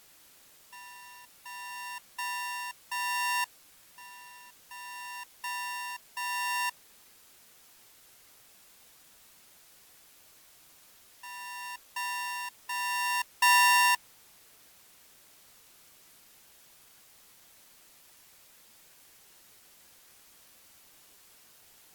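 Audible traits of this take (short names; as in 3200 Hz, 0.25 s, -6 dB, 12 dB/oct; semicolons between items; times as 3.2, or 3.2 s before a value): a buzz of ramps at a fixed pitch in blocks of 16 samples; tremolo triangle 0.61 Hz, depth 55%; a quantiser's noise floor 10-bit, dither triangular; AAC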